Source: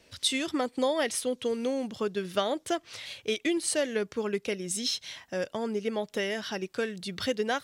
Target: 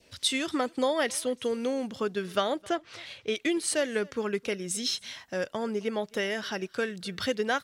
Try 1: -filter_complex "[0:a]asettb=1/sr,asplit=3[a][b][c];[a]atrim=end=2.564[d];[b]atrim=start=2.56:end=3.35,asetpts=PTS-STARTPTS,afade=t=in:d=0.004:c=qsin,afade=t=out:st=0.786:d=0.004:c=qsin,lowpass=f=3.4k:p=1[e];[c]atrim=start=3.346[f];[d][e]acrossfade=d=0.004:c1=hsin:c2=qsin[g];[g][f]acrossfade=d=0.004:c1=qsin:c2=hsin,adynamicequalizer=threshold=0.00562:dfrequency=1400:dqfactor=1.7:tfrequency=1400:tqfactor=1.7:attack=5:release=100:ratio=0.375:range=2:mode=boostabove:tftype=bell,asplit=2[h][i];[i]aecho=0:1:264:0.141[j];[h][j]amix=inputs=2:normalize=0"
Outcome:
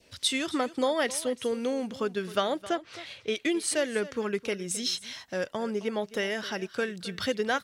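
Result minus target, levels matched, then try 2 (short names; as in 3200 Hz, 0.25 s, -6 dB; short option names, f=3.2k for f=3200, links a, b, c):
echo-to-direct +8.5 dB
-filter_complex "[0:a]asettb=1/sr,asplit=3[a][b][c];[a]atrim=end=2.564[d];[b]atrim=start=2.56:end=3.35,asetpts=PTS-STARTPTS,afade=t=in:d=0.004:c=qsin,afade=t=out:st=0.786:d=0.004:c=qsin,lowpass=f=3.4k:p=1[e];[c]atrim=start=3.346[f];[d][e]acrossfade=d=0.004:c1=hsin:c2=qsin[g];[g][f]acrossfade=d=0.004:c1=qsin:c2=hsin,adynamicequalizer=threshold=0.00562:dfrequency=1400:dqfactor=1.7:tfrequency=1400:tqfactor=1.7:attack=5:release=100:ratio=0.375:range=2:mode=boostabove:tftype=bell,asplit=2[h][i];[i]aecho=0:1:264:0.0531[j];[h][j]amix=inputs=2:normalize=0"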